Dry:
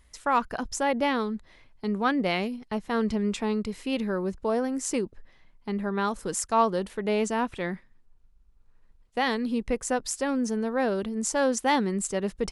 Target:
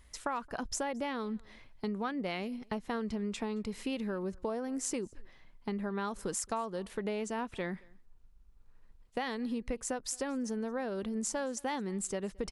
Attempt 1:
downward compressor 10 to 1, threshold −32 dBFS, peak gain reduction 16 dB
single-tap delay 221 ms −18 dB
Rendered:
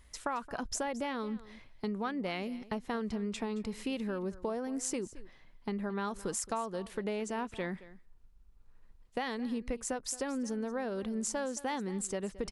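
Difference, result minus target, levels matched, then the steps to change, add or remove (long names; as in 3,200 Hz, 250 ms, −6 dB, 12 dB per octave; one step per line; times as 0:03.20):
echo-to-direct +9.5 dB
change: single-tap delay 221 ms −27.5 dB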